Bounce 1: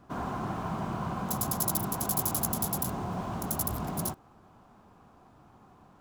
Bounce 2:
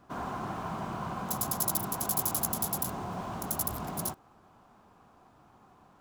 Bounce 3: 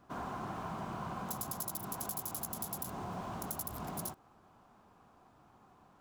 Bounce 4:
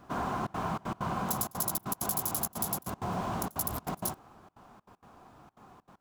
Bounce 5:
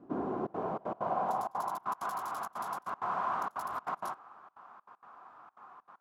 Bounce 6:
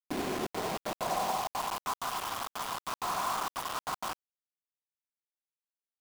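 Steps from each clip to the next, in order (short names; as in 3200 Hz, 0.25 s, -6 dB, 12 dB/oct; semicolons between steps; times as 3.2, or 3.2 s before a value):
low shelf 370 Hz -5.5 dB
compressor, threshold -32 dBFS, peak gain reduction 8.5 dB; gain -3.5 dB
step gate "xxxxxx.xxx.x." 194 bpm -24 dB; gain +8 dB
band-pass sweep 320 Hz -> 1200 Hz, 0.09–2.02; gain +7.5 dB
bit-crush 6-bit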